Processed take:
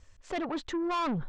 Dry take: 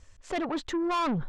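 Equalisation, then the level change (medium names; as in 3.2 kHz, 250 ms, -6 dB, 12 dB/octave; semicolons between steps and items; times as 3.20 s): low-pass 7.8 kHz 12 dB/octave; -2.5 dB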